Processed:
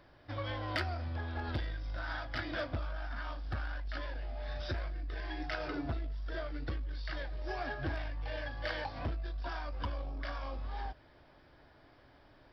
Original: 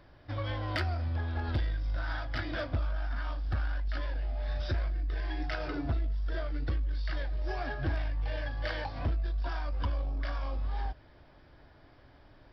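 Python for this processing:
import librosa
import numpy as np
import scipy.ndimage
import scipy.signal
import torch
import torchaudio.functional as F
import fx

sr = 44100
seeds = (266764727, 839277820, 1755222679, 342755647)

y = fx.low_shelf(x, sr, hz=150.0, db=-7.0)
y = y * 10.0 ** (-1.0 / 20.0)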